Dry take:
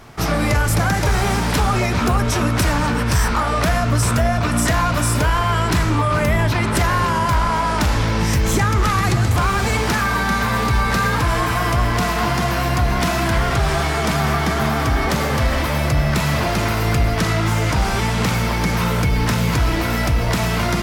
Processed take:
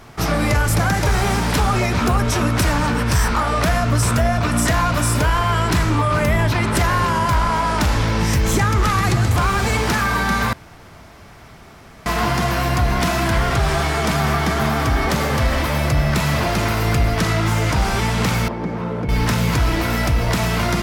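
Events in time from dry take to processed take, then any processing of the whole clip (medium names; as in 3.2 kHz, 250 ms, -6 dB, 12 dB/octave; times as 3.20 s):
10.53–12.06 s: room tone
18.48–19.09 s: band-pass filter 360 Hz, Q 0.8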